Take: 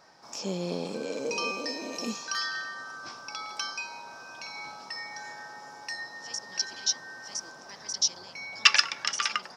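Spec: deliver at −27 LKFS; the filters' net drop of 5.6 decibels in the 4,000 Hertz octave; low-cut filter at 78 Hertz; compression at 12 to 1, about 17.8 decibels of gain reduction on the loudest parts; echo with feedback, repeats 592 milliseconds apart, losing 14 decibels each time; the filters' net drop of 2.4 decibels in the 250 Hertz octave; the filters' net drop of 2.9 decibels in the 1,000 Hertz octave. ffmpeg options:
ffmpeg -i in.wav -af "highpass=78,equalizer=frequency=250:width_type=o:gain=-3,equalizer=frequency=1000:width_type=o:gain=-3,equalizer=frequency=4000:width_type=o:gain=-8.5,acompressor=threshold=-37dB:ratio=12,aecho=1:1:592|1184:0.2|0.0399,volume=14.5dB" out.wav

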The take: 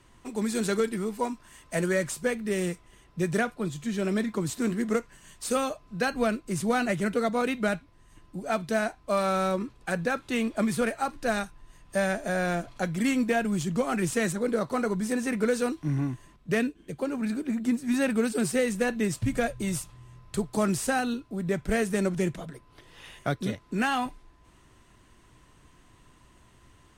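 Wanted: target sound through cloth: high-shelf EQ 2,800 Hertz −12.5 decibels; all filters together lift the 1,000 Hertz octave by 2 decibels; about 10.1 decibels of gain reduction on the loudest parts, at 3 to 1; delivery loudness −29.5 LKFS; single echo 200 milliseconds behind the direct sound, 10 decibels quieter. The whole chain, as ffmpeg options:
ffmpeg -i in.wav -af "equalizer=frequency=1000:width_type=o:gain=5,acompressor=threshold=-34dB:ratio=3,highshelf=frequency=2800:gain=-12.5,aecho=1:1:200:0.316,volume=7.5dB" out.wav

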